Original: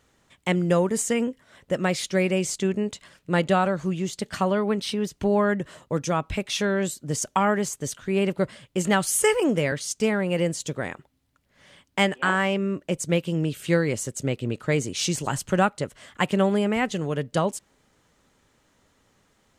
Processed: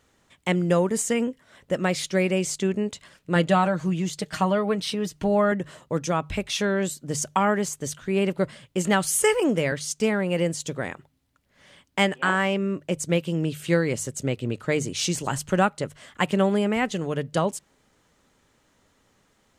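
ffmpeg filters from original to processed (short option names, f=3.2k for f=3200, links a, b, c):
-filter_complex "[0:a]asettb=1/sr,asplit=3[a][b][c];[a]atrim=end=3.354[d];[b]atrim=start=3.35:end=5.52,asetpts=PTS-STARTPTS,afade=t=in:d=0.004:c=qsin,afade=t=out:st=2.166:d=0.004:c=qsin,aecho=1:1:6.4:0.52,atrim=end_sample=95697[e];[c]atrim=start=5.516[f];[d][e]acrossfade=d=0.004:c1=hsin:c2=qsin[g];[g][f]acrossfade=d=0.004:c1=qsin:c2=hsin,bandreject=f=50:t=h:w=6,bandreject=f=100:t=h:w=6,bandreject=f=150:t=h:w=6"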